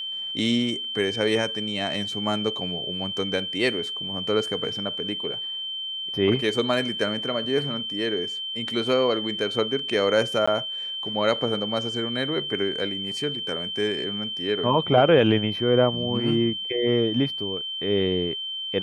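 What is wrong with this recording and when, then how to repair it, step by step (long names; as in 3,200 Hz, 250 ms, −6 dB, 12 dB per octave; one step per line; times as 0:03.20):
whistle 3,100 Hz −29 dBFS
0:10.46–0:10.47: drop-out 15 ms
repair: notch filter 3,100 Hz, Q 30
repair the gap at 0:10.46, 15 ms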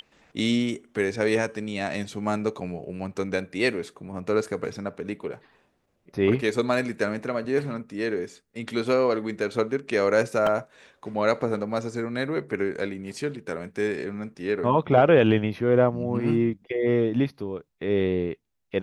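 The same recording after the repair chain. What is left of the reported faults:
none of them is left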